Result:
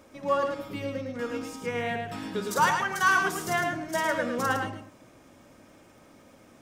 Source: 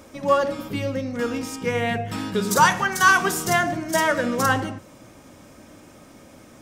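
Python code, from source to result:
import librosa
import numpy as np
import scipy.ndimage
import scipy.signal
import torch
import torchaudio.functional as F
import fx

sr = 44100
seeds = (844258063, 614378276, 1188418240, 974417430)

y = fx.bass_treble(x, sr, bass_db=-3, treble_db=-4)
y = fx.dmg_crackle(y, sr, seeds[0], per_s=36.0, level_db=-47.0)
y = y + 10.0 ** (-5.5 / 20.0) * np.pad(y, (int(108 * sr / 1000.0), 0))[:len(y)]
y = y * librosa.db_to_amplitude(-7.0)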